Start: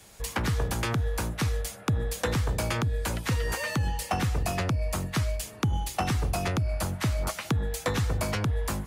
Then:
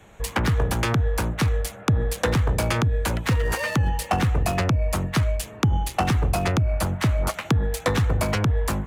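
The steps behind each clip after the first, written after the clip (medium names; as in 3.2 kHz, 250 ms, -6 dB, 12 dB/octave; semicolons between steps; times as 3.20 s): local Wiener filter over 9 samples; trim +6 dB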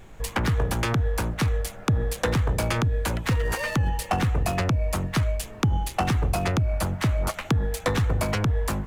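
added noise brown -43 dBFS; trim -2 dB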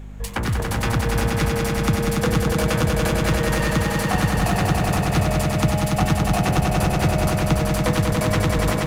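hum 50 Hz, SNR 12 dB; echo with a slow build-up 95 ms, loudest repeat 5, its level -5 dB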